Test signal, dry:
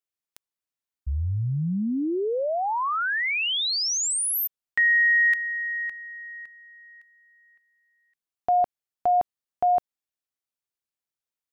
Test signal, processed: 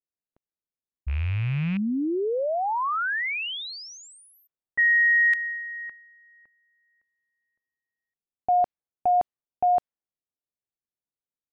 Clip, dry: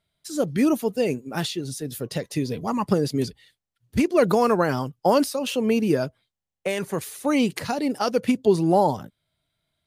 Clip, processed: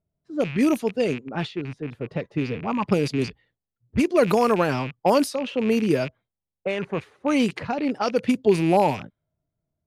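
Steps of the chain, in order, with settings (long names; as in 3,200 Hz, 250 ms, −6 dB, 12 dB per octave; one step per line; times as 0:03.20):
loose part that buzzes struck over −35 dBFS, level −24 dBFS
low-pass that shuts in the quiet parts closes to 540 Hz, open at −16 dBFS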